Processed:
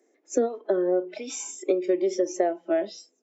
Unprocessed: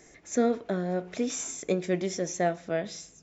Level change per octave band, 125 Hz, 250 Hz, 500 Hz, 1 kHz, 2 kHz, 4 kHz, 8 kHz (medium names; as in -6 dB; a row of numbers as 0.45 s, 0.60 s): under -15 dB, +1.5 dB, +5.0 dB, +0.5 dB, -3.5 dB, -1.5 dB, no reading